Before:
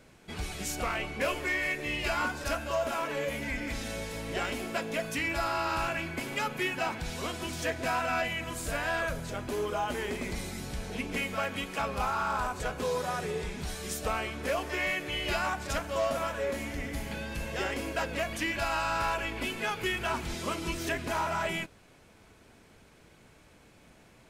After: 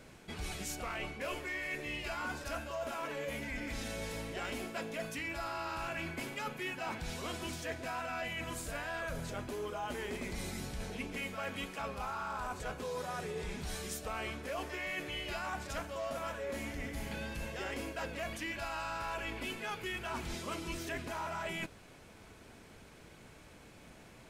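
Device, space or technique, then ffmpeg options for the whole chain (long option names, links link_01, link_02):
compression on the reversed sound: -af "areverse,acompressor=threshold=-39dB:ratio=6,areverse,volume=2dB"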